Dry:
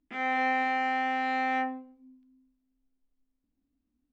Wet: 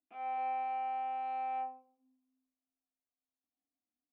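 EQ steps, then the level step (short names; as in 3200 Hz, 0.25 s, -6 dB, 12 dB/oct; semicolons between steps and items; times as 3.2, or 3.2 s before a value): low shelf 420 Hz +9 dB; dynamic EQ 240 Hz, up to -7 dB, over -45 dBFS, Q 1.6; vowel filter a; -3.5 dB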